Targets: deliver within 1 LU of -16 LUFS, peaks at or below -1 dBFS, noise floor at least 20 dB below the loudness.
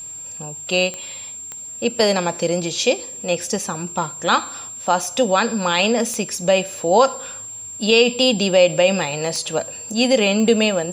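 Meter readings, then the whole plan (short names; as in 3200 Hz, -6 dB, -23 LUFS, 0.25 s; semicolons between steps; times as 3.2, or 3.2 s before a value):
clicks 5; steady tone 7400 Hz; tone level -31 dBFS; loudness -18.5 LUFS; peak -2.5 dBFS; loudness target -16.0 LUFS
-> de-click; notch 7400 Hz, Q 30; gain +2.5 dB; limiter -1 dBFS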